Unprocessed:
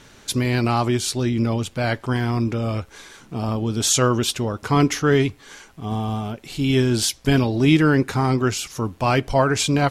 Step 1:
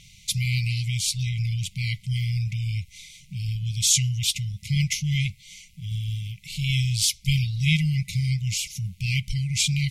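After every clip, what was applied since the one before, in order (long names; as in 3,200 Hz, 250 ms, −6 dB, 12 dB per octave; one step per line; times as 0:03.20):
brick-wall band-stop 200–2,000 Hz
parametric band 250 Hz −2.5 dB 1.2 octaves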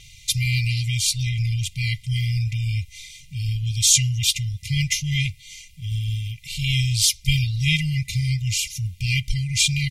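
comb filter 2.5 ms, depth 81%
level +2 dB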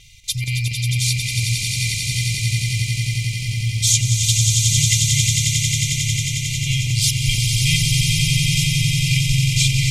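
square-wave tremolo 4.2 Hz, depth 65%, duty 85%
on a send: echo that builds up and dies away 90 ms, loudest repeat 8, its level −6 dB
on the sum: level −1 dB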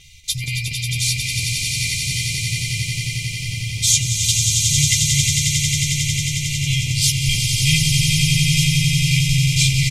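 double-tracking delay 13 ms −5 dB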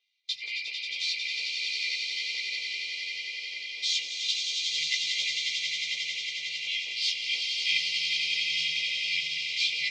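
multi-voice chorus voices 6, 0.82 Hz, delay 16 ms, depth 4 ms
elliptic band-pass filter 470–4,500 Hz, stop band 60 dB
noise gate with hold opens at −28 dBFS
level −2.5 dB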